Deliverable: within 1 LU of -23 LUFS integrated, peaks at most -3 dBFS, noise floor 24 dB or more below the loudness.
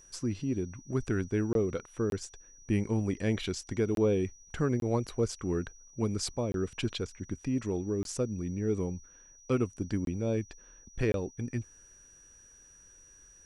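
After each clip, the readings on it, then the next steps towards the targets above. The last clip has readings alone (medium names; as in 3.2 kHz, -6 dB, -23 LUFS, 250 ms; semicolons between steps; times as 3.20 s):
dropouts 8; longest dropout 22 ms; steady tone 5.8 kHz; tone level -55 dBFS; loudness -32.5 LUFS; peak level -16.0 dBFS; loudness target -23.0 LUFS
-> interpolate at 1.53/2.10/3.95/4.80/6.52/8.03/10.05/11.12 s, 22 ms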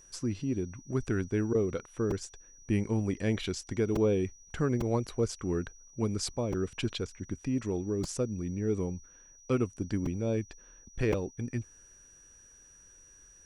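dropouts 0; steady tone 5.8 kHz; tone level -55 dBFS
-> band-stop 5.8 kHz, Q 30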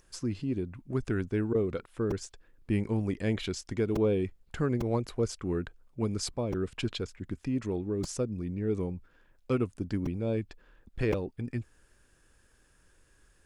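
steady tone not found; loudness -32.5 LUFS; peak level -14.5 dBFS; loudness target -23.0 LUFS
-> trim +9.5 dB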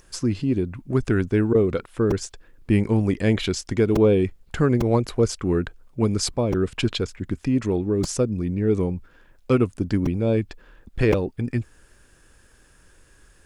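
loudness -23.0 LUFS; peak level -5.0 dBFS; noise floor -55 dBFS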